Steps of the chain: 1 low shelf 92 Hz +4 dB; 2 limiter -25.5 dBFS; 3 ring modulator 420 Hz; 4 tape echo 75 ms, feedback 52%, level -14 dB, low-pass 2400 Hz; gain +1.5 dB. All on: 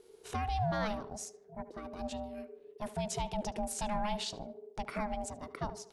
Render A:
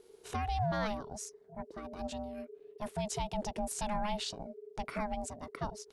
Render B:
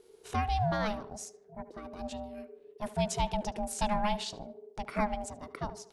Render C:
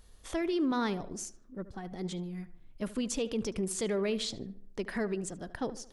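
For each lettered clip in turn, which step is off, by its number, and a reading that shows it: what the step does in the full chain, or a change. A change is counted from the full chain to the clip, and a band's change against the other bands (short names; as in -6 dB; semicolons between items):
4, echo-to-direct -34.5 dB to none; 2, crest factor change +3.5 dB; 3, crest factor change -2.5 dB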